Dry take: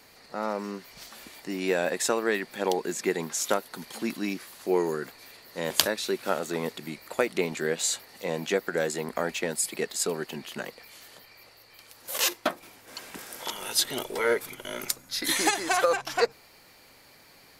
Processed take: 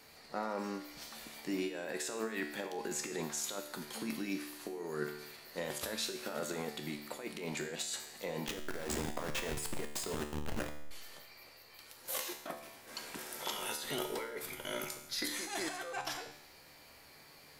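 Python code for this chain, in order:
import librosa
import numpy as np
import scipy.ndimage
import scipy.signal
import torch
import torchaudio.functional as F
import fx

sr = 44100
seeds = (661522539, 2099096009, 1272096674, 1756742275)

y = fx.delta_hold(x, sr, step_db=-27.0, at=(8.47, 10.91))
y = fx.over_compress(y, sr, threshold_db=-32.0, ratio=-1.0)
y = fx.comb_fb(y, sr, f0_hz=74.0, decay_s=0.82, harmonics='all', damping=0.0, mix_pct=80)
y = y * librosa.db_to_amplitude(3.0)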